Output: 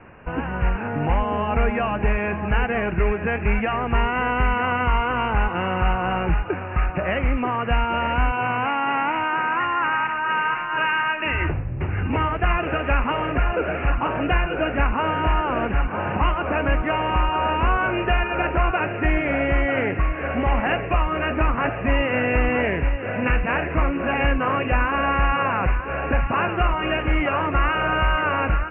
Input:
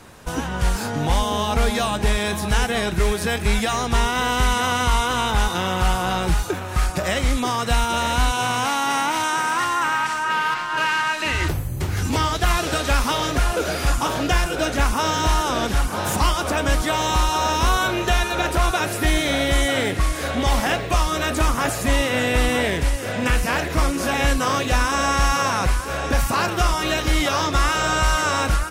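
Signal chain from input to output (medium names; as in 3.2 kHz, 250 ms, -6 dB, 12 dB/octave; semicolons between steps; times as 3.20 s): Chebyshev low-pass 2.8 kHz, order 8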